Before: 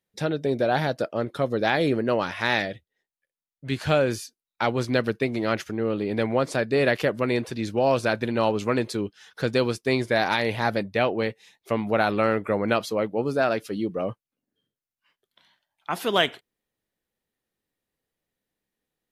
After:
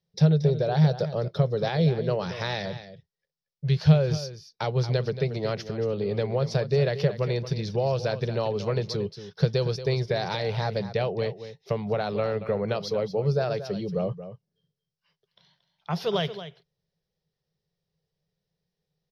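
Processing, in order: compressor 3:1, threshold -24 dBFS, peak gain reduction 7 dB; EQ curve 110 Hz 0 dB, 160 Hz +12 dB, 270 Hz -23 dB, 410 Hz -1 dB, 1400 Hz -11 dB, 2500 Hz -10 dB, 5500 Hz +2 dB, 7900 Hz -27 dB, 12000 Hz -19 dB; on a send: echo 0.229 s -12.5 dB; on the sum: gain +4.5 dB

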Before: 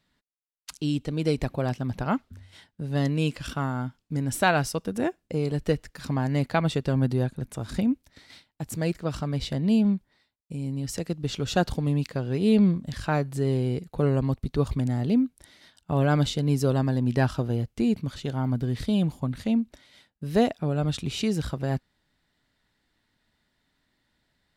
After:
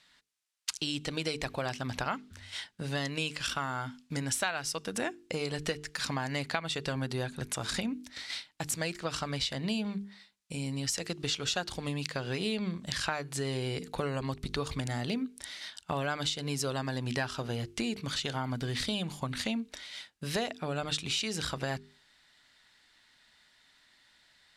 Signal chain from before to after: LPF 9300 Hz 12 dB/oct; tilt shelf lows -9 dB, about 750 Hz; notches 50/100/150/200/250/300/350/400/450 Hz; compressor 5:1, threshold -35 dBFS, peak gain reduction 20 dB; gain +4.5 dB

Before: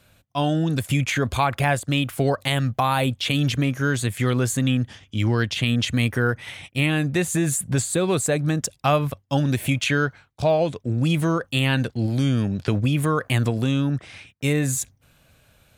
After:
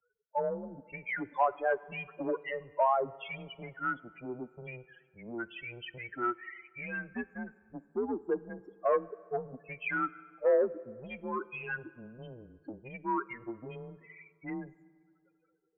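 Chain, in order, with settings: loudest bins only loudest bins 8; soft clip -13.5 dBFS, distortion -23 dB; three-band isolator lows -13 dB, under 590 Hz, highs -15 dB, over 2200 Hz; on a send at -18 dB: reverb RT60 2.3 s, pre-delay 3 ms; on the sum: mistuned SSB -120 Hz 370–3100 Hz

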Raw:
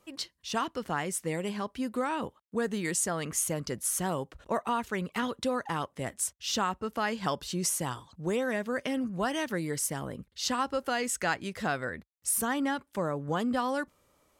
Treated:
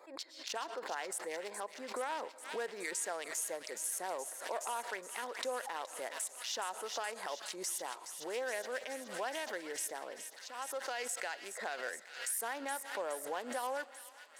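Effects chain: Wiener smoothing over 15 samples; recorder AGC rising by 13 dB/s; Bessel high-pass 720 Hz, order 4; bell 1200 Hz -8.5 dB 0.38 oct; 9.79–10.85 auto swell 0.533 s; limiter -28 dBFS, peak gain reduction 10 dB; thin delay 0.42 s, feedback 74%, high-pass 2000 Hz, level -9 dB; on a send at -20 dB: reverb RT60 1.4 s, pre-delay 85 ms; on the sum: backwards sustainer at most 91 dB/s

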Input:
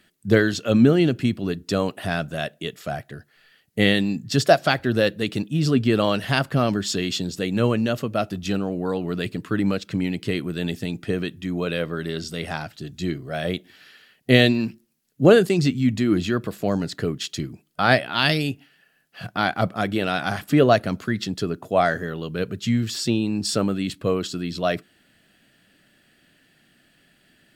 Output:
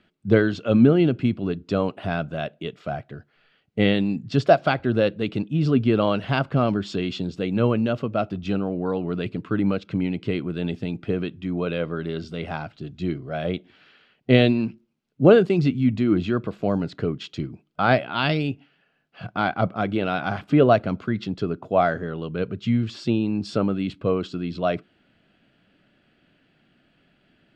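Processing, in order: LPF 2600 Hz 12 dB/oct; bell 1800 Hz -10.5 dB 0.21 oct

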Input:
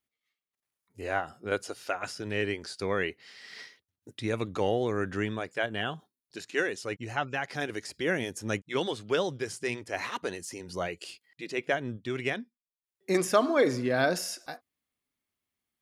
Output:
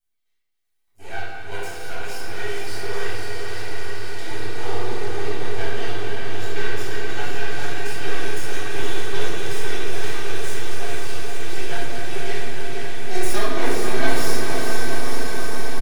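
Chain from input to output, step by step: regenerating reverse delay 0.423 s, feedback 82%, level -9.5 dB; high shelf 3800 Hz +10.5 dB; comb 2.6 ms, depth 69%; half-wave rectifier; diffused feedback echo 0.492 s, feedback 74%, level -4 dB; reverb RT60 1.2 s, pre-delay 7 ms, DRR -8 dB; gain -10 dB

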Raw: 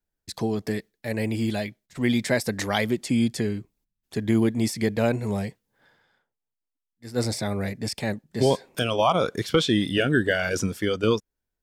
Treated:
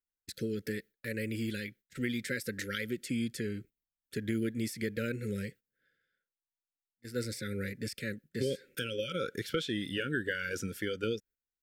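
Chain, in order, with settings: brick-wall FIR band-stop 570–1300 Hz; tilt shelf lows -7 dB, about 920 Hz; gate -48 dBFS, range -12 dB; compressor 2:1, threshold -32 dBFS, peak gain reduction 8.5 dB; bell 5900 Hz -12.5 dB 2.8 oct

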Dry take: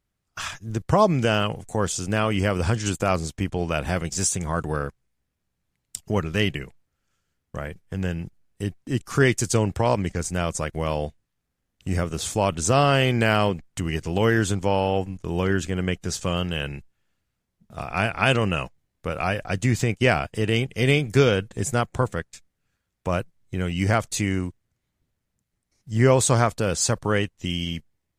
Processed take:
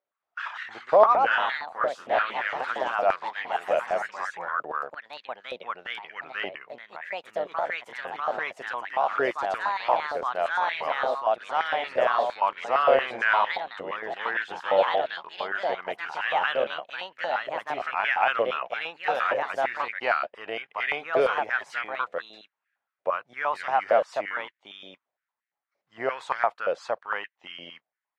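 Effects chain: air absorption 370 m; added harmonics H 7 -44 dB, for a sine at -6.5 dBFS; echoes that change speed 0.205 s, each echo +2 st, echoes 3; stepped high-pass 8.7 Hz 580–1800 Hz; gain -4.5 dB

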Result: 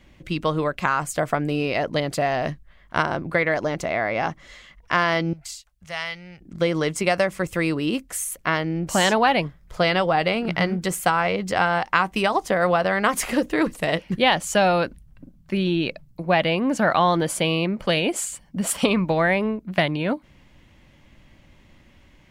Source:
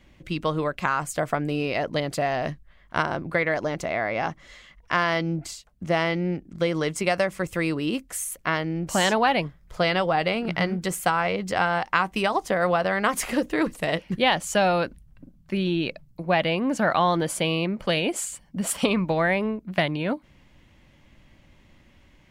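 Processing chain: 5.33–6.41 passive tone stack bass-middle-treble 10-0-10; gain +2.5 dB

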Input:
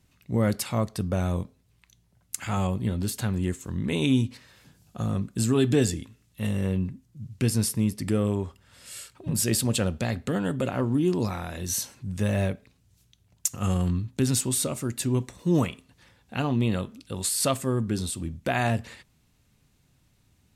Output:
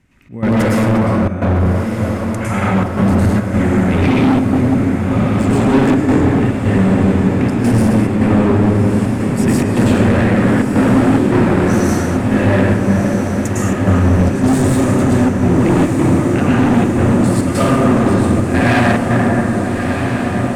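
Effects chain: Bessel low-pass 9100 Hz, order 2; reverb RT60 3.1 s, pre-delay 98 ms, DRR -9 dB; step gate "xx.xxxxxx.x" 106 bpm -12 dB; ten-band EQ 250 Hz +5 dB, 2000 Hz +9 dB, 4000 Hz -7 dB; hard clip -15.5 dBFS, distortion -7 dB; high shelf 3800 Hz -3.5 dB, from 0.85 s -8.5 dB; diffused feedback echo 1.298 s, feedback 76%, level -6.5 dB; gain +5 dB

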